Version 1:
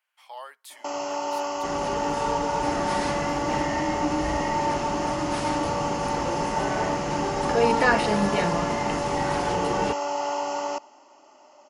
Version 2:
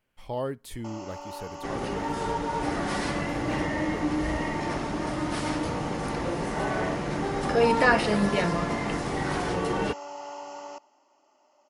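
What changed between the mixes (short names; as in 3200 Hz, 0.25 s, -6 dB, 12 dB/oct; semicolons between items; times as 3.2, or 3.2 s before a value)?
speech: remove HPF 850 Hz 24 dB/oct; first sound -11.5 dB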